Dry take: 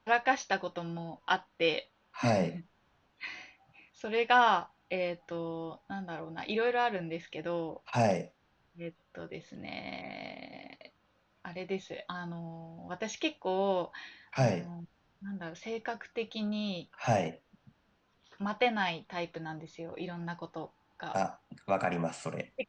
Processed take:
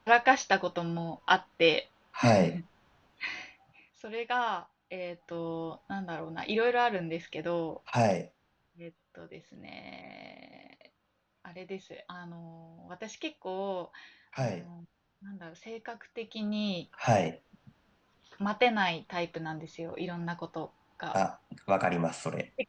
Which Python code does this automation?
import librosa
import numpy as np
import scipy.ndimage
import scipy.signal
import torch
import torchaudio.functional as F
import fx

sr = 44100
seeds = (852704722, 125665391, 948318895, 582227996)

y = fx.gain(x, sr, db=fx.line((3.39, 5.0), (4.16, -6.5), (4.98, -6.5), (5.53, 2.5), (7.89, 2.5), (8.86, -5.0), (16.15, -5.0), (16.63, 3.0)))